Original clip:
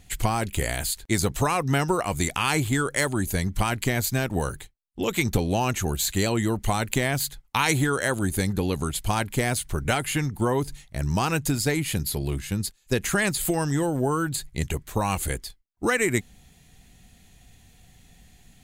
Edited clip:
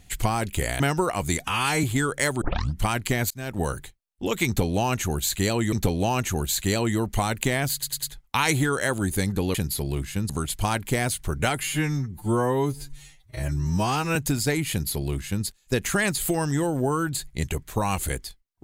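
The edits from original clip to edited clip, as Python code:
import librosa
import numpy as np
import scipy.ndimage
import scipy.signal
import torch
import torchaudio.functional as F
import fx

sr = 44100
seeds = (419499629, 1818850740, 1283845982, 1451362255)

y = fx.edit(x, sr, fx.cut(start_s=0.8, length_s=0.91),
    fx.stretch_span(start_s=2.31, length_s=0.29, factor=1.5),
    fx.tape_start(start_s=3.18, length_s=0.38),
    fx.fade_in_span(start_s=4.07, length_s=0.32),
    fx.repeat(start_s=5.23, length_s=1.26, count=2),
    fx.stutter(start_s=7.23, slice_s=0.1, count=4),
    fx.stretch_span(start_s=10.09, length_s=1.26, factor=2.0),
    fx.duplicate(start_s=11.9, length_s=0.75, to_s=8.75), tone=tone)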